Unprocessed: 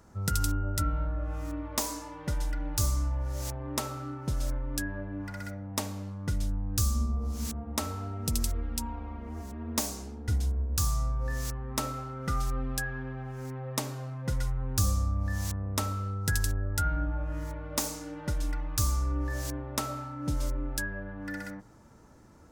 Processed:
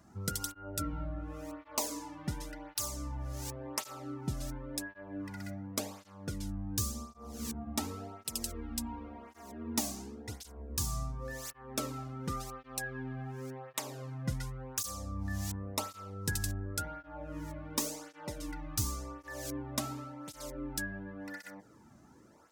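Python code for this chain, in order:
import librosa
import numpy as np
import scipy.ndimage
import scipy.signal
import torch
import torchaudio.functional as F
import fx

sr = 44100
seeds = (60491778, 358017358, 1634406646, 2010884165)

y = fx.dynamic_eq(x, sr, hz=1400.0, q=2.4, threshold_db=-51.0, ratio=4.0, max_db=-5)
y = fx.flanger_cancel(y, sr, hz=0.91, depth_ms=2.3)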